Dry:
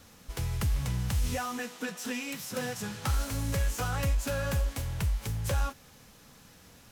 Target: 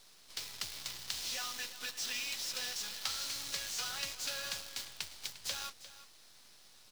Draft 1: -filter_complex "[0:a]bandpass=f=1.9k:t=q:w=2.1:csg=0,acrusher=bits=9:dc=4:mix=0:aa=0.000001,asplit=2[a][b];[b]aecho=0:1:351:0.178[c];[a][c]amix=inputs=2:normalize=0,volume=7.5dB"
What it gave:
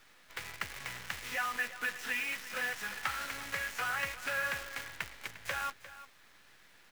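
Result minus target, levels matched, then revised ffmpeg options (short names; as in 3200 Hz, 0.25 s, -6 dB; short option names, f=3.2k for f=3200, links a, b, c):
2000 Hz band +8.5 dB
-filter_complex "[0:a]bandpass=f=4.4k:t=q:w=2.1:csg=0,acrusher=bits=9:dc=4:mix=0:aa=0.000001,asplit=2[a][b];[b]aecho=0:1:351:0.178[c];[a][c]amix=inputs=2:normalize=0,volume=7.5dB"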